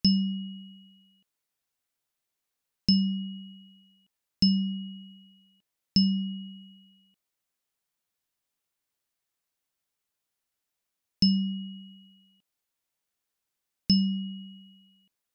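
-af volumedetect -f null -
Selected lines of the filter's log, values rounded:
mean_volume: -32.6 dB
max_volume: -11.0 dB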